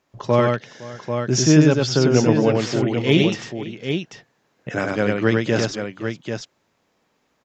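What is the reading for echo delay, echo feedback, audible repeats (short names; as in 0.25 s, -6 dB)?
97 ms, no steady repeat, 3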